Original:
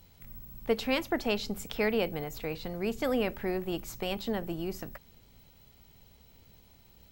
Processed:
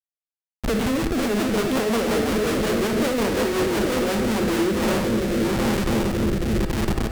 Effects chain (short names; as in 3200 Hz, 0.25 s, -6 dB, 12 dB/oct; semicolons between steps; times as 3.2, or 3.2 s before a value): multi-head echo 0.275 s, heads all three, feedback 60%, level -15 dB; treble ducked by the level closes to 2300 Hz, closed at -29.5 dBFS; AGC gain up to 13.5 dB; elliptic high-pass 210 Hz, stop band 50 dB; in parallel at -1 dB: compressor 4:1, threshold -42 dBFS, peak gain reduction 25.5 dB; on the sum: low shelf 480 Hz +8.5 dB; low-pass opened by the level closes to 620 Hz, open at -16.5 dBFS; added noise blue -33 dBFS; LPF 3600 Hz 12 dB/oct; Schmitt trigger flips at -28.5 dBFS; rotary speaker horn 5.5 Hz, later 0.9 Hz, at 4.19; on a send at -6.5 dB: reverb RT60 0.35 s, pre-delay 50 ms; on the sum: gain -4.5 dB